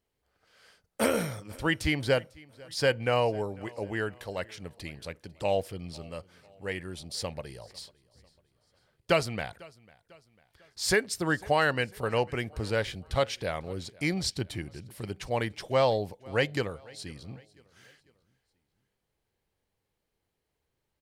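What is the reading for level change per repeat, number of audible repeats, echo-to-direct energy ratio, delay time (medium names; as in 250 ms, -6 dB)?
-7.0 dB, 2, -23.0 dB, 498 ms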